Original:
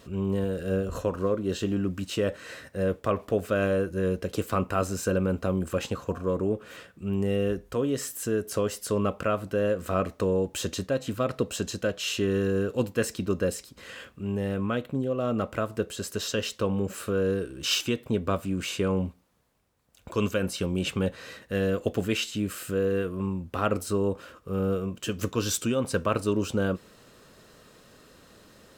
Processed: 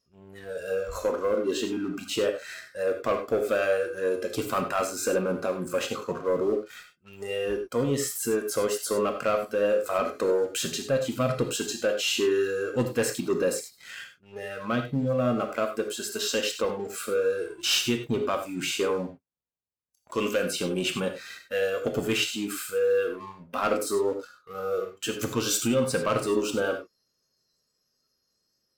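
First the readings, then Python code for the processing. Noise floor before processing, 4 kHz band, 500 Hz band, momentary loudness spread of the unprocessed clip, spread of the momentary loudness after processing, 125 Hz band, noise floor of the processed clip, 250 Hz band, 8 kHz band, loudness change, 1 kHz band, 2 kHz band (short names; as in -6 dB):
-56 dBFS, +3.5 dB, +2.0 dB, 5 LU, 9 LU, -6.0 dB, -76 dBFS, -2.5 dB, +3.5 dB, +1.0 dB, +2.0 dB, +3.0 dB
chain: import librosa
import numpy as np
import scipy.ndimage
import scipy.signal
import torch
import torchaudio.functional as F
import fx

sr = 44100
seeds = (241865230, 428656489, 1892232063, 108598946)

y = fx.noise_reduce_blind(x, sr, reduce_db=22)
y = fx.leveller(y, sr, passes=2)
y = fx.rev_gated(y, sr, seeds[0], gate_ms=120, shape='flat', drr_db=5.0)
y = y * librosa.db_to_amplitude(-4.5)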